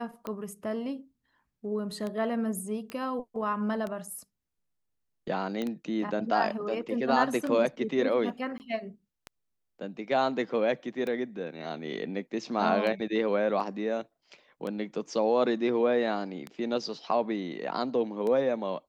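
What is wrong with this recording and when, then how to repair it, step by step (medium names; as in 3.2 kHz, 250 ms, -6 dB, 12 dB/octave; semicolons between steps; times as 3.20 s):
tick 33 1/3 rpm -22 dBFS
2.90 s: pop -24 dBFS
5.62 s: pop -20 dBFS
8.58–8.60 s: dropout 19 ms
13.60 s: dropout 4.6 ms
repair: de-click; interpolate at 8.58 s, 19 ms; interpolate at 13.60 s, 4.6 ms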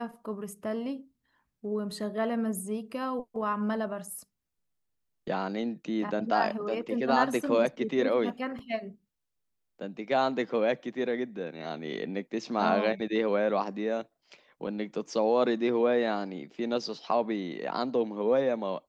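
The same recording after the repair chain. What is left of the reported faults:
nothing left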